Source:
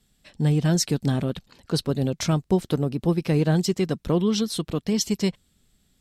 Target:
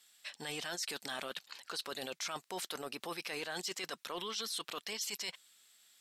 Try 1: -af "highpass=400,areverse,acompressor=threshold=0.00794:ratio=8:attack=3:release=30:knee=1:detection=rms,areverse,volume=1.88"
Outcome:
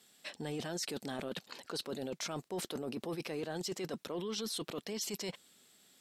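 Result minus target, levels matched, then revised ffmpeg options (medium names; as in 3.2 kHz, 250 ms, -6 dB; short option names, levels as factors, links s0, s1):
500 Hz band +5.0 dB
-af "highpass=1200,areverse,acompressor=threshold=0.00794:ratio=8:attack=3:release=30:knee=1:detection=rms,areverse,volume=1.88"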